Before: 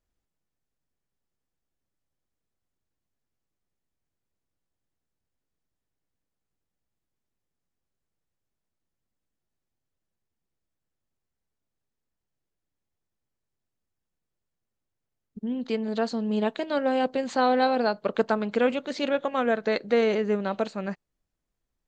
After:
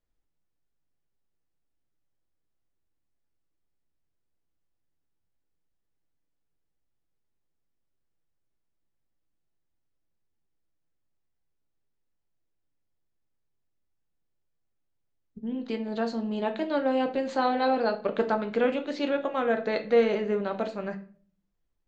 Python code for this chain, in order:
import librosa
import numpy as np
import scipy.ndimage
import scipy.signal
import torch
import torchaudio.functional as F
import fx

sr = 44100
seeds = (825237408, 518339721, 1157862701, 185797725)

y = fx.air_absorb(x, sr, metres=75.0)
y = fx.room_shoebox(y, sr, seeds[0], volume_m3=38.0, walls='mixed', distance_m=0.31)
y = F.gain(torch.from_numpy(y), -2.5).numpy()